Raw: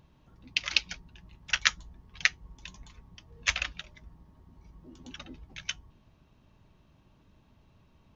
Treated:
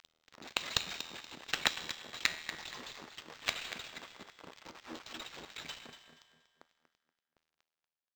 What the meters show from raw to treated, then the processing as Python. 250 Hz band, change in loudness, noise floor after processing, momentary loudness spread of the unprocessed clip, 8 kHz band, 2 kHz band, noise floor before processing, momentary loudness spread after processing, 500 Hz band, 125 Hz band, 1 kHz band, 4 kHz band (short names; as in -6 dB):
-0.5 dB, -8.5 dB, under -85 dBFS, 21 LU, n/a, -7.5 dB, -63 dBFS, 18 LU, +6.0 dB, -7.0 dB, 0.0 dB, -4.5 dB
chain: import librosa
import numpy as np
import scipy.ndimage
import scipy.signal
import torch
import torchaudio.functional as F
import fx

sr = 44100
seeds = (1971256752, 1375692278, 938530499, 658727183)

p1 = fx.peak_eq(x, sr, hz=3900.0, db=12.5, octaves=0.22)
p2 = fx.over_compress(p1, sr, threshold_db=-47.0, ratio=-1.0)
p3 = p1 + (p2 * librosa.db_to_amplitude(-0.5))
p4 = fx.quant_companded(p3, sr, bits=2)
p5 = fx.comb_fb(p4, sr, f0_hz=80.0, decay_s=2.0, harmonics='all', damping=0.0, mix_pct=70)
p6 = fx.filter_lfo_highpass(p5, sr, shape='sine', hz=4.2, low_hz=250.0, high_hz=2700.0, q=0.84)
p7 = p6 + fx.echo_feedback(p6, sr, ms=238, feedback_pct=29, wet_db=-11.5, dry=0)
p8 = np.interp(np.arange(len(p7)), np.arange(len(p7))[::4], p7[::4])
y = p8 * librosa.db_to_amplitude(-3.0)